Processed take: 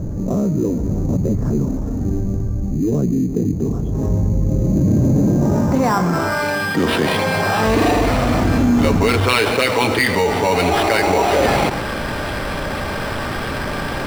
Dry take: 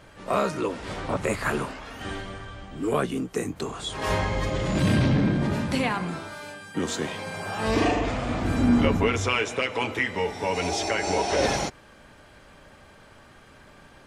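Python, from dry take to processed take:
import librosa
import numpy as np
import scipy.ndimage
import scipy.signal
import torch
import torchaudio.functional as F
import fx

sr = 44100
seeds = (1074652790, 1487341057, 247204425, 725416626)

p1 = fx.filter_sweep_lowpass(x, sr, from_hz=230.0, to_hz=5400.0, start_s=4.45, end_s=7.24, q=0.97)
p2 = p1 + fx.echo_single(p1, sr, ms=129, db=-22.5, dry=0)
p3 = fx.sample_hold(p2, sr, seeds[0], rate_hz=6600.0, jitter_pct=0)
p4 = fx.high_shelf(p3, sr, hz=5800.0, db=-10.5)
p5 = fx.env_flatten(p4, sr, amount_pct=70)
y = p5 * 10.0 ** (4.0 / 20.0)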